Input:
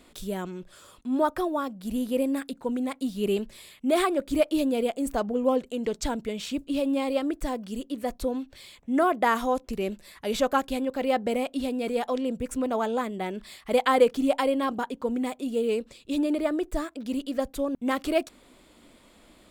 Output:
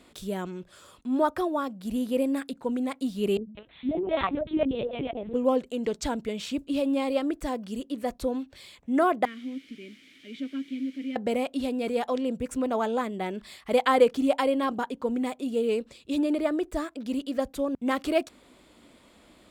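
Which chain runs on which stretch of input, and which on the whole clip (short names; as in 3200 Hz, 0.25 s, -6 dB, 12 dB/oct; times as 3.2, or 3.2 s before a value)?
3.37–5.34 three bands offset in time mids, lows, highs 0.1/0.2 s, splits 160/530 Hz + LPC vocoder at 8 kHz pitch kept
9.25–11.16 requantised 6-bit, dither triangular + vowel filter i
whole clip: HPF 43 Hz; high shelf 9900 Hz -6 dB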